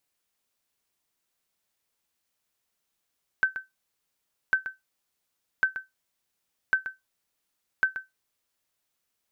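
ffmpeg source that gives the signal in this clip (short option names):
-f lavfi -i "aevalsrc='0.211*(sin(2*PI*1540*mod(t,1.1))*exp(-6.91*mod(t,1.1)/0.17)+0.266*sin(2*PI*1540*max(mod(t,1.1)-0.13,0))*exp(-6.91*max(mod(t,1.1)-0.13,0)/0.17))':d=5.5:s=44100"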